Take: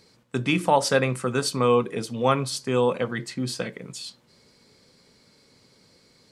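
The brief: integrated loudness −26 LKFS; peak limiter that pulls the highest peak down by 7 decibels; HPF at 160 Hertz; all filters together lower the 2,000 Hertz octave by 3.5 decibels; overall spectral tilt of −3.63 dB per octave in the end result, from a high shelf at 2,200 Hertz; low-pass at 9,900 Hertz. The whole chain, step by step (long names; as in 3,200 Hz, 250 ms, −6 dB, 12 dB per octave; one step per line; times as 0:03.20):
high-pass filter 160 Hz
low-pass filter 9,900 Hz
parametric band 2,000 Hz −9 dB
high-shelf EQ 2,200 Hz +6.5 dB
level +1 dB
brickwall limiter −13.5 dBFS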